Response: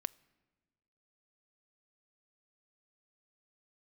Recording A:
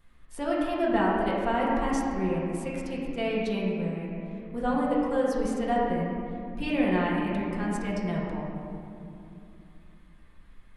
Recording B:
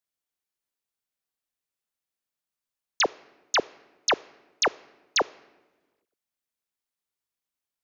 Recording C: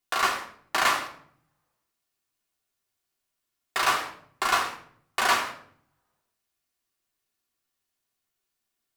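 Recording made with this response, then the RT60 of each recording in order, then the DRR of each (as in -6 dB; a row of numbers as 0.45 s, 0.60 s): B; 2.8 s, 1.4 s, 0.60 s; -6.5 dB, 21.5 dB, -1.5 dB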